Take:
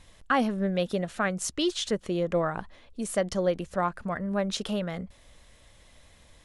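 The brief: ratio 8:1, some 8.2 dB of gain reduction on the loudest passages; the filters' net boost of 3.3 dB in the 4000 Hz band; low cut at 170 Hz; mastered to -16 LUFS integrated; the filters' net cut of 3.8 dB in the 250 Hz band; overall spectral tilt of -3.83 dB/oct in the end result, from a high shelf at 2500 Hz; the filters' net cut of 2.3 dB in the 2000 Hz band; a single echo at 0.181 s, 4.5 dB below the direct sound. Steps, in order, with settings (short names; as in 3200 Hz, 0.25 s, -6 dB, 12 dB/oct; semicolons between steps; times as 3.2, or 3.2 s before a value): HPF 170 Hz; bell 250 Hz -3.5 dB; bell 2000 Hz -3 dB; high shelf 2500 Hz -4.5 dB; bell 4000 Hz +9 dB; compressor 8:1, threshold -30 dBFS; echo 0.181 s -4.5 dB; gain +18.5 dB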